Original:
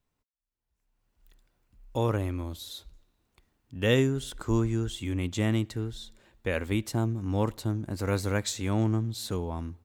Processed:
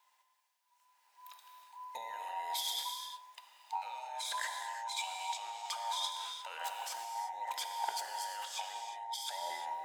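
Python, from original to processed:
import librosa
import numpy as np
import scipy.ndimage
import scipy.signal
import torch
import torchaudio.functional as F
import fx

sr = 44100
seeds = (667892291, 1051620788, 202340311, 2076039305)

y = fx.band_invert(x, sr, width_hz=1000)
y = scipy.signal.sosfilt(scipy.signal.butter(2, 1100.0, 'highpass', fs=sr, output='sos'), y)
y = fx.peak_eq(y, sr, hz=4000.0, db=2.5, octaves=2.1)
y = fx.over_compress(y, sr, threshold_db=-44.0, ratio=-1.0)
y = fx.notch_comb(y, sr, f0_hz=1400.0, at=(8.54, 9.26))
y = fx.rev_gated(y, sr, seeds[0], gate_ms=380, shape='flat', drr_db=3.0)
y = y * 10.0 ** (1.0 / 20.0)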